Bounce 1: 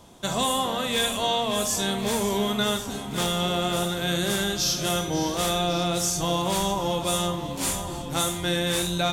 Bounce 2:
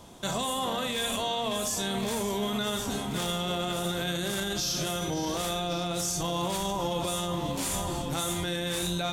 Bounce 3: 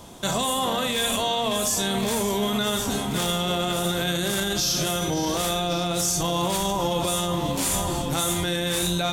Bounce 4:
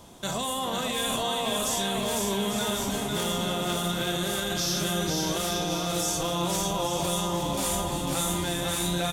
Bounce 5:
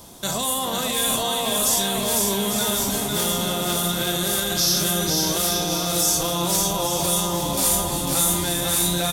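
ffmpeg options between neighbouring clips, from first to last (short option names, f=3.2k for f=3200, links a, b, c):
-af "alimiter=limit=-22dB:level=0:latency=1:release=44,volume=1dB"
-af "highshelf=f=9.6k:g=4,volume=5.5dB"
-af "aecho=1:1:500|850|1095|1266|1387:0.631|0.398|0.251|0.158|0.1,volume=-5.5dB"
-af "aexciter=amount=2.8:drive=1.4:freq=4.1k,volume=3.5dB"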